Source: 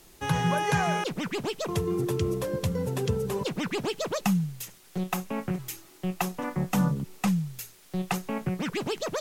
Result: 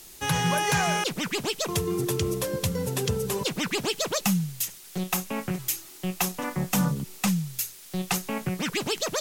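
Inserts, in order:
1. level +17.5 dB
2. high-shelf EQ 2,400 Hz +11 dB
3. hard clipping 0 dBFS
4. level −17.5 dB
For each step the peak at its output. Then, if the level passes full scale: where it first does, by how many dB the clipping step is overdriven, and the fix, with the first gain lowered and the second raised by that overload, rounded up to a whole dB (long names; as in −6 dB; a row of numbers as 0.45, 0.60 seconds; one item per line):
+5.5, +9.0, 0.0, −17.5 dBFS
step 1, 9.0 dB
step 1 +8.5 dB, step 4 −8.5 dB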